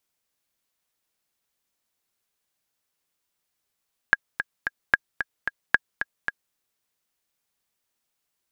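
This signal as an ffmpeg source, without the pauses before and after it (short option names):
-f lavfi -i "aevalsrc='pow(10,(-2.5-9.5*gte(mod(t,3*60/223),60/223))/20)*sin(2*PI*1640*mod(t,60/223))*exp(-6.91*mod(t,60/223)/0.03)':d=2.42:s=44100"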